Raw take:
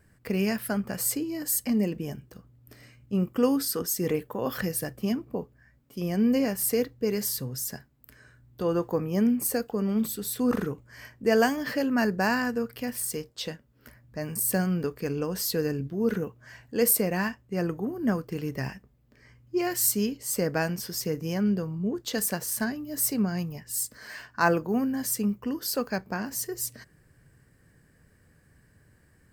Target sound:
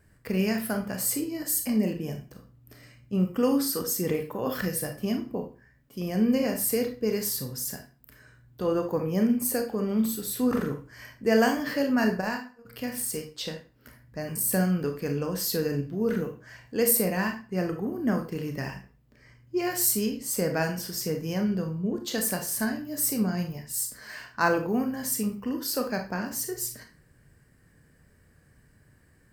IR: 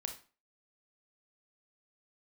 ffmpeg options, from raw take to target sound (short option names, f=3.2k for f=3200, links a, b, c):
-filter_complex "[0:a]asplit=3[a][b][c];[a]afade=t=out:st=12.2:d=0.02[d];[b]agate=range=-30dB:threshold=-22dB:ratio=16:detection=peak,afade=t=in:st=12.2:d=0.02,afade=t=out:st=12.65:d=0.02[e];[c]afade=t=in:st=12.65:d=0.02[f];[d][e][f]amix=inputs=3:normalize=0[g];[1:a]atrim=start_sample=2205[h];[g][h]afir=irnorm=-1:irlink=0,volume=1.5dB"